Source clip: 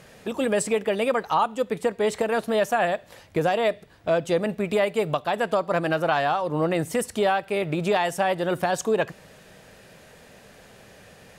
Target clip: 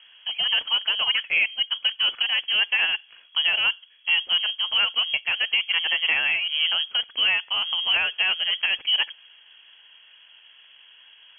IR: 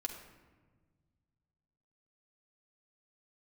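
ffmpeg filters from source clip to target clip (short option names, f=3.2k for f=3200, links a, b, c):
-af "adynamicsmooth=sensitivity=6:basefreq=1.3k,lowpass=f=2.9k:t=q:w=0.5098,lowpass=f=2.9k:t=q:w=0.6013,lowpass=f=2.9k:t=q:w=0.9,lowpass=f=2.9k:t=q:w=2.563,afreqshift=-3400"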